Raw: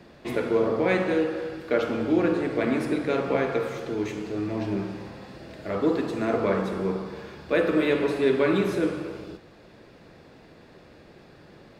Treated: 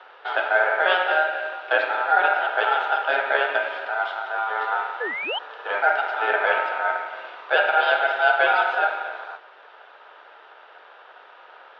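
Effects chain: painted sound rise, 5.00–5.39 s, 580–2100 Hz -29 dBFS; ring modulator 1.1 kHz; Chebyshev band-pass 410–3600 Hz, order 3; trim +6.5 dB

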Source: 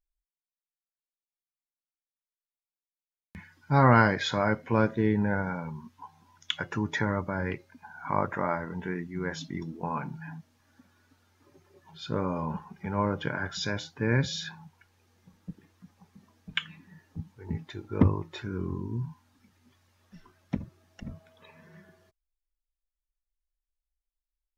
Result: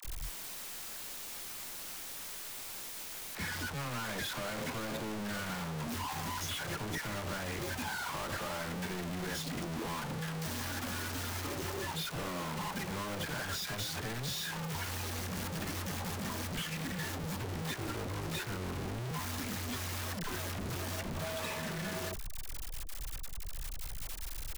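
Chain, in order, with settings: one-bit comparator; phase dispersion lows, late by 51 ms, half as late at 660 Hz; trim -5.5 dB

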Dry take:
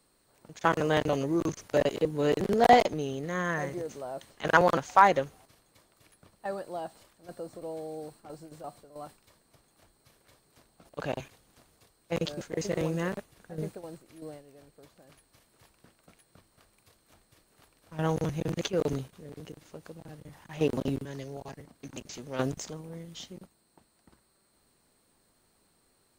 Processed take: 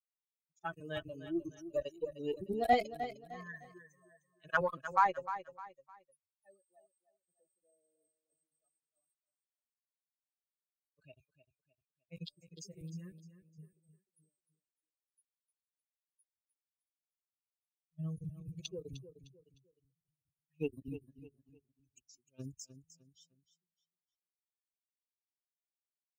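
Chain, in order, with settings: expander on every frequency bin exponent 3; Chebyshev shaper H 6 -34 dB, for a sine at -10 dBFS; feedback delay 305 ms, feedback 33%, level -12 dB; trim -5 dB

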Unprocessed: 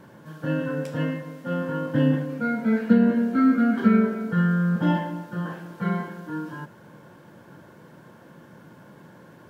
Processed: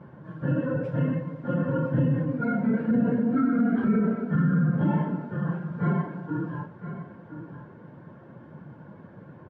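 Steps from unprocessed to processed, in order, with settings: phase randomisation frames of 50 ms; Bessel low-pass 1.4 kHz, order 2; peaking EQ 130 Hz +6 dB 0.84 oct; peak limiter -16.5 dBFS, peak gain reduction 13 dB; on a send: delay 1011 ms -11.5 dB

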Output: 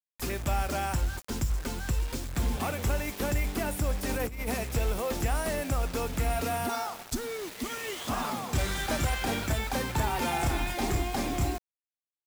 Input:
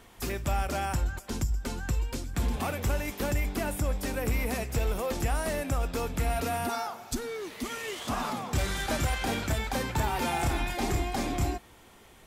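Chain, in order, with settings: bit crusher 7-bit; 4.09–4.51 s: compressor with a negative ratio -31 dBFS, ratio -0.5

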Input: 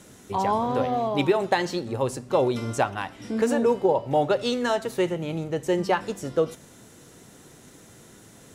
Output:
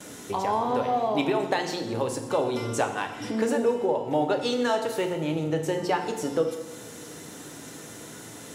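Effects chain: compression 2:1, threshold -38 dBFS, peak gain reduction 12 dB; high-pass 210 Hz 6 dB/octave; FDN reverb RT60 1.1 s, low-frequency decay 1.3×, high-frequency decay 0.9×, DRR 4.5 dB; gate with hold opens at -44 dBFS; trim +7.5 dB

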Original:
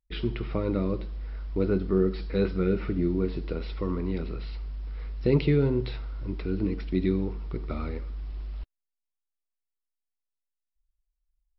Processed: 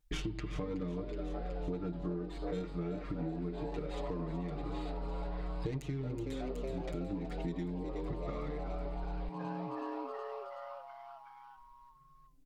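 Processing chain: tracing distortion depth 0.21 ms; comb 6.1 ms, depth 96%; tape speed -7%; frequency-shifting echo 372 ms, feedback 64%, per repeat +130 Hz, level -11 dB; compression 16:1, threshold -41 dBFS, peak gain reduction 28 dB; trim +6.5 dB

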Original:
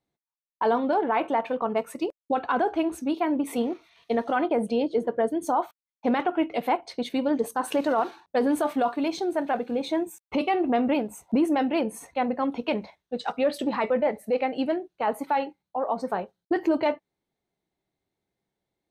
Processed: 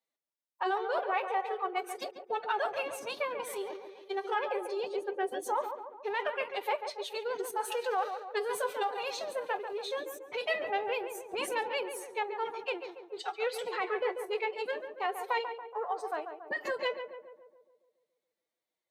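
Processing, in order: high-pass 1.1 kHz 6 dB/octave; formant-preserving pitch shift +9 st; filtered feedback delay 141 ms, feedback 58%, low-pass 1.5 kHz, level -7 dB; trim -1.5 dB

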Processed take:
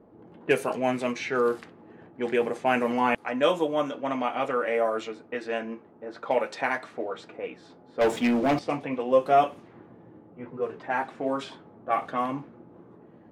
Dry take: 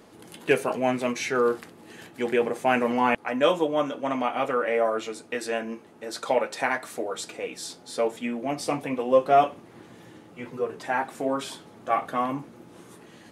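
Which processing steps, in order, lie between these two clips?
level-controlled noise filter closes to 720 Hz, open at -20.5 dBFS; 8.01–8.59 s: waveshaping leveller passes 3; trim -1.5 dB

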